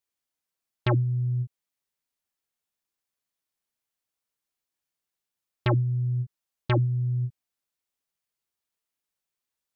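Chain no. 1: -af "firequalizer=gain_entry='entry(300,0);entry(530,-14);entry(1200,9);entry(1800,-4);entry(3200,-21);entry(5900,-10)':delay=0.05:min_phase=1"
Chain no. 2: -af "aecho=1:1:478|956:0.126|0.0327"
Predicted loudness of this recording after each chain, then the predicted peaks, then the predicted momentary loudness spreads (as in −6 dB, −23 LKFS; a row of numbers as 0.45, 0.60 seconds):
−27.5, −27.5 LKFS; −12.5, −14.0 dBFS; 10, 20 LU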